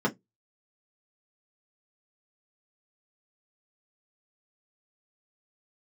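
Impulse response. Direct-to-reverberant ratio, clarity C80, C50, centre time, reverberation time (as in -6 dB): -4.0 dB, 35.0 dB, 22.5 dB, 12 ms, no single decay rate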